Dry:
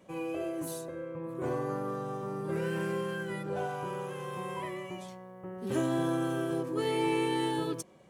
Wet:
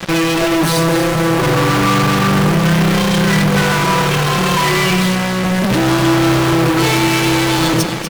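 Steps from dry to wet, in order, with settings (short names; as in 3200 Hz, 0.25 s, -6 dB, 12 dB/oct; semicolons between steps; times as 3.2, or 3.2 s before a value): bell 540 Hz -12 dB 1.6 oct; comb 6 ms, depth 84%; de-hum 86.7 Hz, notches 13; in parallel at +2.5 dB: negative-ratio compressor -38 dBFS; on the sum: polynomial smoothing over 15 samples; fuzz box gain 54 dB, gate -50 dBFS; on a send: split-band echo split 1200 Hz, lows 0.153 s, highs 0.243 s, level -9 dB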